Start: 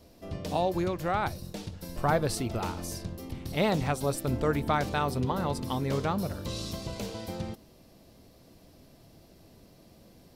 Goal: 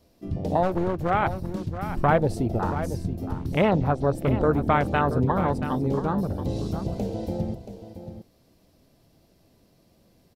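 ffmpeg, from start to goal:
-filter_complex "[0:a]asplit=3[a][b][c];[a]afade=t=out:st=3.61:d=0.02[d];[b]lowpass=5.2k,afade=t=in:st=3.61:d=0.02,afade=t=out:st=4.14:d=0.02[e];[c]afade=t=in:st=4.14:d=0.02[f];[d][e][f]amix=inputs=3:normalize=0,afwtdn=0.0251,asettb=1/sr,asplit=3[g][h][i];[g]atrim=end=5.644[j];[h]atrim=start=5.64:end=6.28,asetpts=PTS-STARTPTS,afade=t=in:d=0.004:c=qsin,afade=t=out:st=0.636:d=0.004:c=qsin,equalizer=f=100:t=o:w=0.67:g=-11,equalizer=f=630:t=o:w=0.67:g=-7,equalizer=f=1.6k:t=o:w=0.67:g=-8[k];[i]atrim=start=6.276[l];[j][k]acrossfade=d=0.004:c1=hsin:c2=qsin[m];[m][l]acrossfade=d=0.004:c1=qsin:c2=hsin,asplit=2[n][o];[o]acompressor=threshold=-39dB:ratio=6,volume=2dB[p];[n][p]amix=inputs=2:normalize=0,asplit=3[q][r][s];[q]afade=t=out:st=0.62:d=0.02[t];[r]aeval=exprs='clip(val(0),-1,0.0188)':c=same,afade=t=in:st=0.62:d=0.02,afade=t=out:st=1.09:d=0.02[u];[s]afade=t=in:st=1.09:d=0.02[v];[t][u][v]amix=inputs=3:normalize=0,asplit=2[w][x];[x]aecho=0:1:678:0.282[y];[w][y]amix=inputs=2:normalize=0,volume=4dB"

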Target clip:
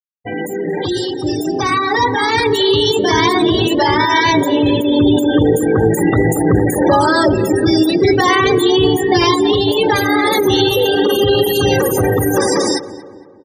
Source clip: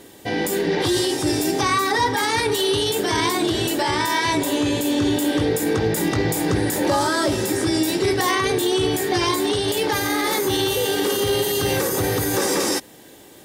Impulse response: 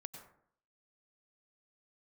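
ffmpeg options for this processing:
-filter_complex "[0:a]afftfilt=real='re*gte(hypot(re,im),0.1)':imag='im*gte(hypot(re,im),0.1)':win_size=1024:overlap=0.75,asplit=2[a][b];[b]adelay=230,lowpass=f=1.9k:p=1,volume=-14dB,asplit=2[c][d];[d]adelay=230,lowpass=f=1.9k:p=1,volume=0.53,asplit=2[e][f];[f]adelay=230,lowpass=f=1.9k:p=1,volume=0.53,asplit=2[g][h];[h]adelay=230,lowpass=f=1.9k:p=1,volume=0.53,asplit=2[i][j];[j]adelay=230,lowpass=f=1.9k:p=1,volume=0.53[k];[a][c][e][g][i][k]amix=inputs=6:normalize=0,dynaudnorm=f=380:g=11:m=9.5dB,volume=1dB"

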